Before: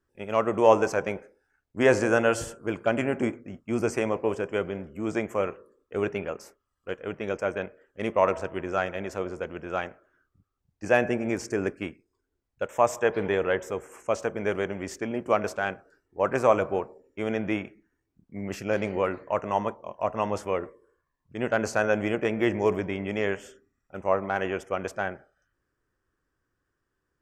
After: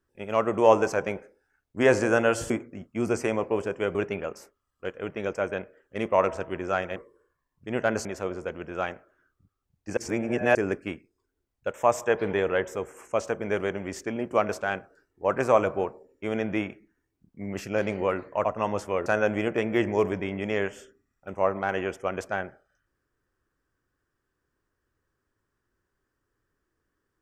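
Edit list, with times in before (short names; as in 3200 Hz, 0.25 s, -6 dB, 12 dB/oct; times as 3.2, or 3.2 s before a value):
2.5–3.23 cut
4.68–5.99 cut
10.92–11.5 reverse
19.4–20.03 cut
20.64–21.73 move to 9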